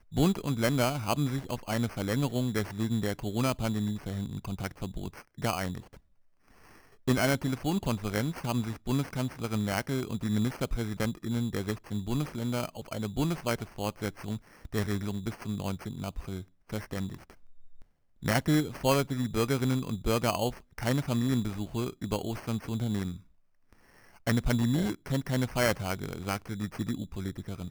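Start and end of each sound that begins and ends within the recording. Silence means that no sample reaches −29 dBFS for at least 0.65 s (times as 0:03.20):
0:07.08–0:17.14
0:18.26–0:23.12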